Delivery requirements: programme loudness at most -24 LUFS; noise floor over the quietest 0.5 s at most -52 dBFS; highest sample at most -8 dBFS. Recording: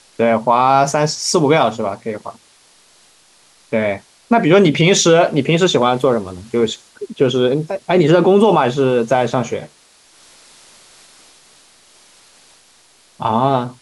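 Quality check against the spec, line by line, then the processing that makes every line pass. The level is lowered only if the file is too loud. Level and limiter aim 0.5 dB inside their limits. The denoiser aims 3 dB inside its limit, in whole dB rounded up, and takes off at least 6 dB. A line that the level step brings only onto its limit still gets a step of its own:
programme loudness -15.0 LUFS: fail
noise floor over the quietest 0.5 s -51 dBFS: fail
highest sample -2.5 dBFS: fail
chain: gain -9.5 dB

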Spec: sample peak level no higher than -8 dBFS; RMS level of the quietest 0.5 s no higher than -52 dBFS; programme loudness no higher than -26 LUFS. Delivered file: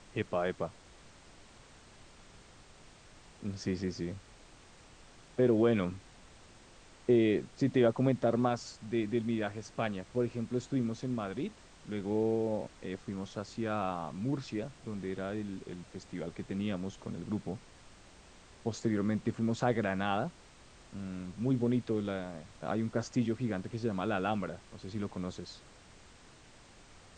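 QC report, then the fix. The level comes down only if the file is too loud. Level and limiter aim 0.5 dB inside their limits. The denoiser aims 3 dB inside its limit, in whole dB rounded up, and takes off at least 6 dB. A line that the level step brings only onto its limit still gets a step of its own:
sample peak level -15.0 dBFS: OK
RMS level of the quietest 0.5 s -57 dBFS: OK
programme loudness -34.0 LUFS: OK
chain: none

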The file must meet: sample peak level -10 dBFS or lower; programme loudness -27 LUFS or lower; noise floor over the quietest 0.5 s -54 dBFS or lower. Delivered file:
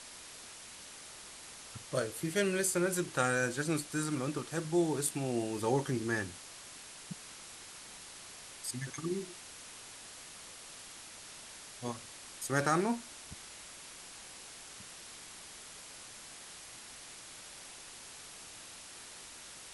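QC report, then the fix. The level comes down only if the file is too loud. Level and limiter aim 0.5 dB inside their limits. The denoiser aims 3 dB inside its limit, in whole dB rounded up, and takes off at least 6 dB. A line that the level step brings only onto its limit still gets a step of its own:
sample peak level -15.0 dBFS: OK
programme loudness -38.0 LUFS: OK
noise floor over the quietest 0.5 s -50 dBFS: fail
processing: denoiser 7 dB, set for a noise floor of -50 dBFS

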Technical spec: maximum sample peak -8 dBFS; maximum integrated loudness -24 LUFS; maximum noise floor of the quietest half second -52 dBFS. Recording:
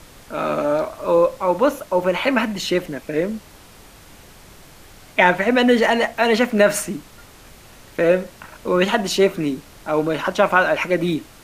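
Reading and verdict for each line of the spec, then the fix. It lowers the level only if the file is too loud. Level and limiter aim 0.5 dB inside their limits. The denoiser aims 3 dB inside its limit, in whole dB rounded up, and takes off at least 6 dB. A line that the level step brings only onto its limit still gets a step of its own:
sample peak -2.0 dBFS: fail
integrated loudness -19.0 LUFS: fail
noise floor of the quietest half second -45 dBFS: fail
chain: denoiser 6 dB, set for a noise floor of -45 dBFS; gain -5.5 dB; limiter -8.5 dBFS

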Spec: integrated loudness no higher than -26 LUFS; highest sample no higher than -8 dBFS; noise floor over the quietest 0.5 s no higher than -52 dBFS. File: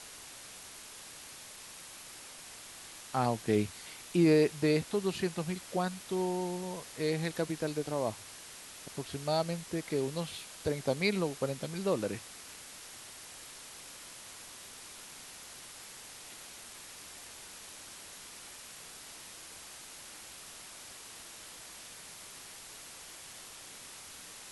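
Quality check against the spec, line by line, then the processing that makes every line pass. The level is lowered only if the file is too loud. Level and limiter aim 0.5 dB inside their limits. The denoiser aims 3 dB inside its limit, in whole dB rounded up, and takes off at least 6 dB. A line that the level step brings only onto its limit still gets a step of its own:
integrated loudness -37.0 LUFS: OK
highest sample -15.0 dBFS: OK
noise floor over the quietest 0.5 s -49 dBFS: fail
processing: denoiser 6 dB, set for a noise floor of -49 dBFS

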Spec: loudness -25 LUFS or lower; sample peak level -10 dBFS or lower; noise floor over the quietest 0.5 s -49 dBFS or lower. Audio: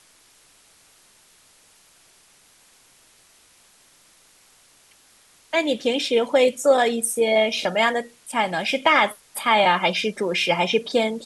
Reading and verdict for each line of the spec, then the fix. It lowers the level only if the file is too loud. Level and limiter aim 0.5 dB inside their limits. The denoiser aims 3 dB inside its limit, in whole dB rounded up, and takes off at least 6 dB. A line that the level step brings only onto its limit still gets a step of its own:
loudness -20.5 LUFS: fail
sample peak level -5.5 dBFS: fail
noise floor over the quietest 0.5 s -56 dBFS: OK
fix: gain -5 dB

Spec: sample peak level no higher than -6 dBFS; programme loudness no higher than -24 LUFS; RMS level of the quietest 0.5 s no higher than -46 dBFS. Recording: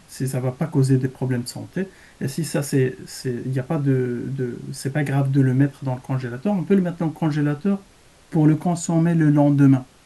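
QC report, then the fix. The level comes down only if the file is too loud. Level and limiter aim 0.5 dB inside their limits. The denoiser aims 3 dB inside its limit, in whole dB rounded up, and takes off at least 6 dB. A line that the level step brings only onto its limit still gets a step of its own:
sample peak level -5.0 dBFS: fail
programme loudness -21.5 LUFS: fail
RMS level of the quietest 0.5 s -51 dBFS: OK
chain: gain -3 dB

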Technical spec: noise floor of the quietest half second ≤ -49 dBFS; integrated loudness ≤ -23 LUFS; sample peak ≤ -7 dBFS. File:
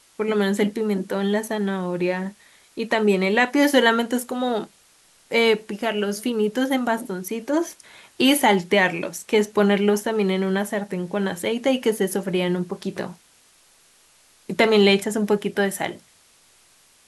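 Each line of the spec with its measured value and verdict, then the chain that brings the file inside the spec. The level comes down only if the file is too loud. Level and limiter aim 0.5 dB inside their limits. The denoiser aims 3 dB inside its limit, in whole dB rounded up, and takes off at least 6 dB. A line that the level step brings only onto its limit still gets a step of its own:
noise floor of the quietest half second -56 dBFS: OK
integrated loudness -22.0 LUFS: fail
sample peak -4.5 dBFS: fail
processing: gain -1.5 dB; limiter -7.5 dBFS

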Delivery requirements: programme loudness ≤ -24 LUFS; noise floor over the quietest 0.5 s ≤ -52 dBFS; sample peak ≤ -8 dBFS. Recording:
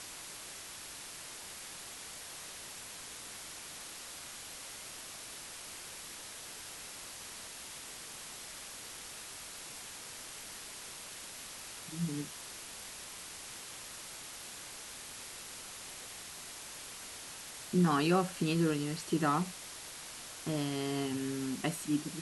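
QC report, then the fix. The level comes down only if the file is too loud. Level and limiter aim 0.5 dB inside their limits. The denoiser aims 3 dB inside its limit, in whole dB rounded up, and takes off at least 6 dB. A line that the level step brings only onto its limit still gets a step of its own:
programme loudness -39.0 LUFS: OK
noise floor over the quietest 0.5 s -47 dBFS: fail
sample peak -16.5 dBFS: OK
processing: denoiser 8 dB, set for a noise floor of -47 dBFS

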